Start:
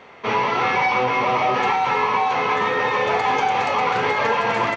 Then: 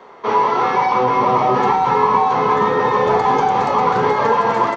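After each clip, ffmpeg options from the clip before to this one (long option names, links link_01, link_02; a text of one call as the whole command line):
ffmpeg -i in.wav -filter_complex "[0:a]equalizer=frequency=100:width_type=o:width=0.67:gain=-9,equalizer=frequency=400:width_type=o:width=0.67:gain=6,equalizer=frequency=1000:width_type=o:width=0.67:gain=7,equalizer=frequency=2500:width_type=o:width=0.67:gain=-9,acrossover=split=220|470|3300[link_01][link_02][link_03][link_04];[link_01]dynaudnorm=framelen=420:gausssize=5:maxgain=13dB[link_05];[link_05][link_02][link_03][link_04]amix=inputs=4:normalize=0" out.wav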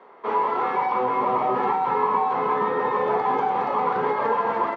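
ffmpeg -i in.wav -af "highpass=200,lowpass=2600,volume=-7dB" out.wav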